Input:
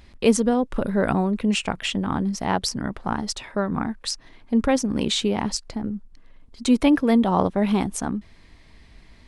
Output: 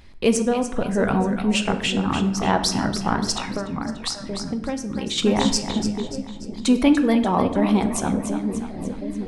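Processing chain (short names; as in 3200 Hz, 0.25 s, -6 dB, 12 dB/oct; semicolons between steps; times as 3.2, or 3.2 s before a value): split-band echo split 550 Hz, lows 0.726 s, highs 0.292 s, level -9.5 dB; reverb removal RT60 0.64 s; 3.41–5.18 compressor 12:1, threshold -29 dBFS, peak gain reduction 14.5 dB; on a send at -8 dB: reverb RT60 0.85 s, pre-delay 6 ms; on the sum: vocal rider within 3 dB 2 s; in parallel at -9 dB: soft clip -18 dBFS, distortion -12 dB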